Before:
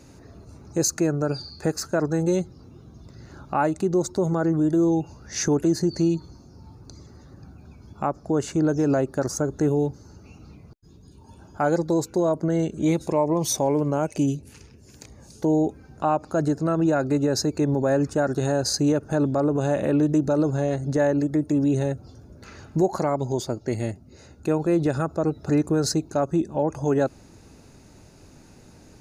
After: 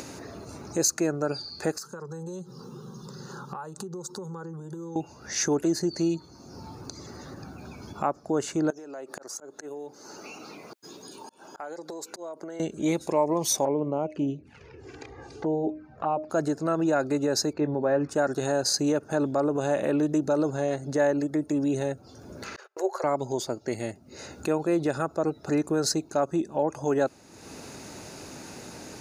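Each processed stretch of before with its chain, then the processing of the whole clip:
0:01.78–0:04.96: low shelf with overshoot 110 Hz −6 dB, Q 3 + downward compressor 5 to 1, threshold −33 dBFS + phaser with its sweep stopped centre 440 Hz, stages 8
0:08.70–0:12.60: high-pass filter 350 Hz + volume swells 606 ms + downward compressor 20 to 1, threshold −36 dBFS
0:13.65–0:16.30: low-pass filter 2,200 Hz + hum removal 308.5 Hz, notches 2 + flanger swept by the level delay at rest 2.9 ms, full sweep at −20.5 dBFS
0:17.53–0:18.09: high-frequency loss of the air 280 metres + double-tracking delay 20 ms −13 dB
0:22.56–0:23.04: Chebyshev high-pass with heavy ripple 370 Hz, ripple 6 dB + noise gate −51 dBFS, range −35 dB
whole clip: high-pass filter 380 Hz 6 dB per octave; upward compression, threshold −30 dBFS

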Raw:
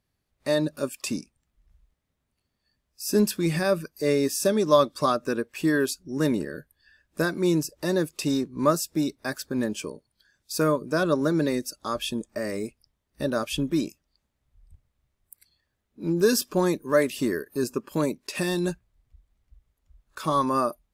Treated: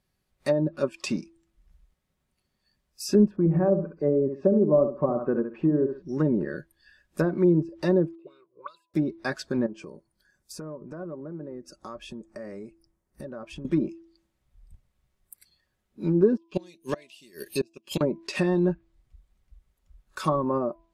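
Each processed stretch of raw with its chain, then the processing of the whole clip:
0:03.36–0:06.02: low-pass filter 1,000 Hz + repeating echo 66 ms, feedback 23%, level −8.5 dB
0:08.15–0:08.94: high-shelf EQ 5,600 Hz −11 dB + envelope filter 220–4,600 Hz, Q 9.4, up, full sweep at −16 dBFS + phaser with its sweep stopped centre 1,200 Hz, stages 8
0:09.66–0:13.65: treble cut that deepens with the level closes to 1,000 Hz, closed at −20 dBFS + parametric band 3,500 Hz −12 dB 1.4 octaves + downward compressor 3 to 1, threshold −41 dBFS
0:16.37–0:18.01: high shelf with overshoot 2,000 Hz +12 dB, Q 3 + gate with flip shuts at −14 dBFS, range −32 dB
whole clip: hum removal 332.2 Hz, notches 3; treble cut that deepens with the level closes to 540 Hz, closed at −19.5 dBFS; comb filter 5.4 ms, depth 32%; level +1.5 dB

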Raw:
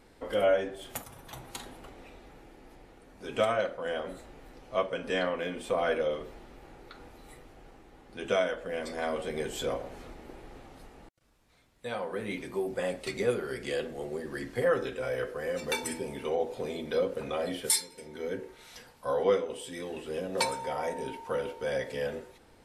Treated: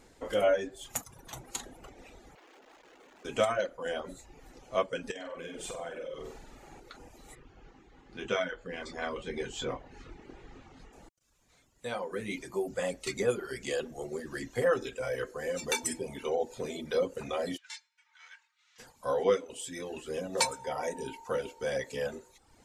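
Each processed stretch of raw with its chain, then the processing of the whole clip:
0:02.35–0:03.25: sign of each sample alone + three-way crossover with the lows and the highs turned down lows −22 dB, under 280 Hz, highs −18 dB, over 4,000 Hz
0:05.11–0:06.80: downward compressor 16 to 1, threshold −37 dBFS + flutter between parallel walls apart 8.1 metres, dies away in 0.78 s
0:07.35–0:10.93: low-pass filter 4,200 Hz + parametric band 610 Hz −7.5 dB 0.7 octaves + double-tracking delay 23 ms −7 dB
0:17.56–0:18.78: spectral envelope flattened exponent 0.6 + Bessel high-pass filter 1,900 Hz, order 6 + head-to-tape spacing loss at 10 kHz 37 dB
whole clip: reverb reduction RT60 0.78 s; parametric band 6,800 Hz +11 dB 0.47 octaves

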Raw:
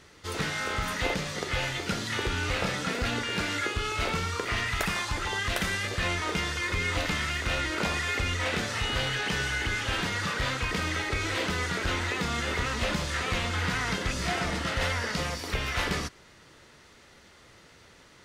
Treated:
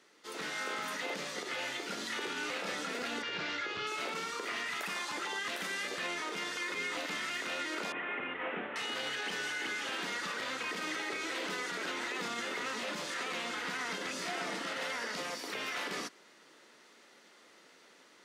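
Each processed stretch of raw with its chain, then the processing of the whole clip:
0:03.22–0:03.87: low-pass filter 5,400 Hz 24 dB per octave + low shelf with overshoot 180 Hz +6.5 dB, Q 3
0:07.92–0:08.76: variable-slope delta modulation 16 kbit/s + high-frequency loss of the air 140 metres
whole clip: high-pass filter 230 Hz 24 dB per octave; automatic gain control gain up to 4.5 dB; brickwall limiter −19 dBFS; level −9 dB

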